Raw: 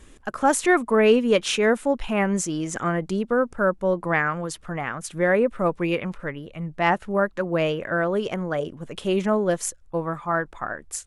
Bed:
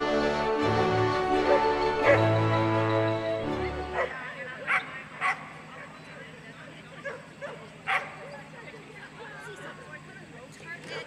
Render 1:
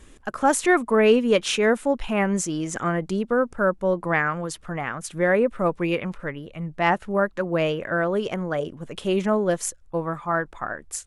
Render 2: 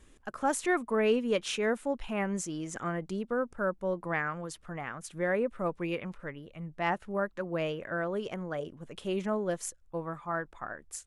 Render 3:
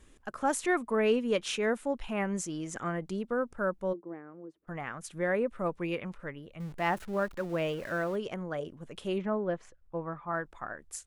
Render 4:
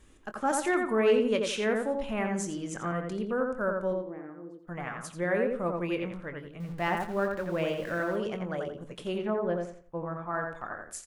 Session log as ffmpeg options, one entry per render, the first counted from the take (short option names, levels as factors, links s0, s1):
-af anull
-af "volume=0.335"
-filter_complex "[0:a]asplit=3[s0][s1][s2];[s0]afade=t=out:st=3.92:d=0.02[s3];[s1]bandpass=f=340:t=q:w=3.5,afade=t=in:st=3.92:d=0.02,afade=t=out:st=4.67:d=0.02[s4];[s2]afade=t=in:st=4.67:d=0.02[s5];[s3][s4][s5]amix=inputs=3:normalize=0,asettb=1/sr,asplit=3[s6][s7][s8];[s6]atrim=end=6.604[s9];[s7]atrim=start=6.6:end=8.16,asetpts=PTS-STARTPTS,afade=t=in:d=0.004:c=qsin,afade=t=out:st=1.556:d=0.004:c=qsin,aeval=exprs='val(0)+0.5*0.00631*sgn(val(0))':c=same[s10];[s8]atrim=start=8.156[s11];[s9][s10]acrossfade=d=0.004:c1=hsin:c2=qsin[s12];[s12][s11]acrossfade=d=0.004:c1=qsin:c2=hsin,asettb=1/sr,asplit=3[s13][s14][s15];[s13]atrim=end=9.184[s16];[s14]atrim=start=9.18:end=10.33,asetpts=PTS-STARTPTS,afade=t=in:d=0.004:c=qsin,afade=t=out:st=1.146:d=0.004:c=qsin,lowpass=2200[s17];[s15]atrim=start=10.326[s18];[s16][s17]acrossfade=d=0.004:c1=hsin:c2=qsin[s19];[s19][s18]acrossfade=d=0.004:c1=qsin:c2=hsin"
-filter_complex "[0:a]asplit=2[s0][s1];[s1]adelay=23,volume=0.266[s2];[s0][s2]amix=inputs=2:normalize=0,asplit=2[s3][s4];[s4]adelay=86,lowpass=f=2600:p=1,volume=0.708,asplit=2[s5][s6];[s6]adelay=86,lowpass=f=2600:p=1,volume=0.31,asplit=2[s7][s8];[s8]adelay=86,lowpass=f=2600:p=1,volume=0.31,asplit=2[s9][s10];[s10]adelay=86,lowpass=f=2600:p=1,volume=0.31[s11];[s3][s5][s7][s9][s11]amix=inputs=5:normalize=0"